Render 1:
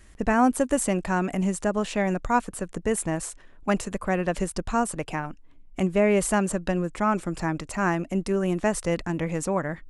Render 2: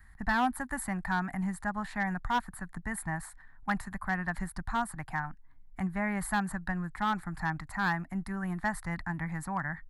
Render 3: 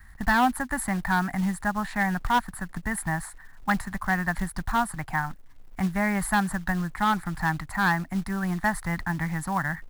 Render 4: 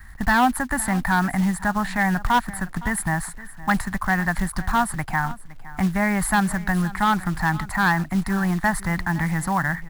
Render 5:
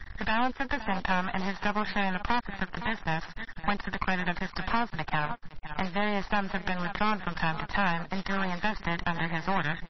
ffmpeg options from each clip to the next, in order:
-filter_complex "[0:a]firequalizer=gain_entry='entry(140,0);entry(480,-26);entry(790,2);entry(1200,-1);entry(1800,6);entry(2700,-18);entry(4200,-5);entry(5900,-17);entry(10000,2)':delay=0.05:min_phase=1,acrossover=split=320|3500[s0][s1][s2];[s1]asoftclip=type=hard:threshold=0.1[s3];[s0][s3][s2]amix=inputs=3:normalize=0,equalizer=f=9300:t=o:w=0.51:g=-8,volume=0.668"
-af "acrusher=bits=5:mode=log:mix=0:aa=0.000001,volume=2.11"
-filter_complex "[0:a]asplit=2[s0][s1];[s1]alimiter=limit=0.0841:level=0:latency=1,volume=1.12[s2];[s0][s2]amix=inputs=2:normalize=0,aecho=1:1:514:0.126"
-filter_complex "[0:a]acrossover=split=370|1100[s0][s1][s2];[s0]acompressor=threshold=0.0158:ratio=4[s3];[s1]acompressor=threshold=0.0316:ratio=4[s4];[s2]acompressor=threshold=0.02:ratio=4[s5];[s3][s4][s5]amix=inputs=3:normalize=0,aresample=16000,aeval=exprs='max(val(0),0)':c=same,aresample=44100,volume=1.68" -ar 22050 -c:a libmp3lame -b:a 24k

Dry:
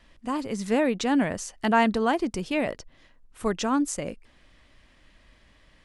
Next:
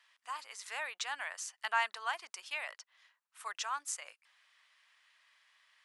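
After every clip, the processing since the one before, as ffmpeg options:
-af "highpass=f=1000:w=0.5412,highpass=f=1000:w=1.3066,volume=0.531"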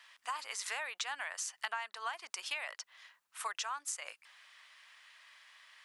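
-af "acompressor=threshold=0.00631:ratio=12,volume=2.82"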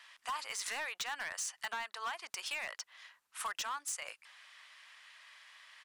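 -af "aresample=32000,aresample=44100,volume=56.2,asoftclip=hard,volume=0.0178,volume=1.26"

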